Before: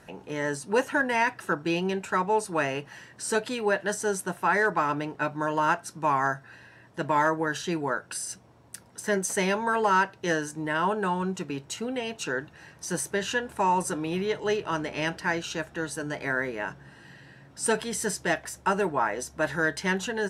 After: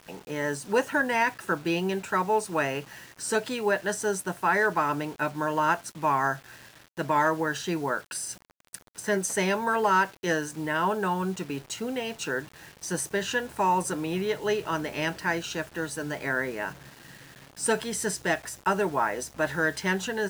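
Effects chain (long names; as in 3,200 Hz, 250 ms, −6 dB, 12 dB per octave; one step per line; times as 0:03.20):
bit reduction 8 bits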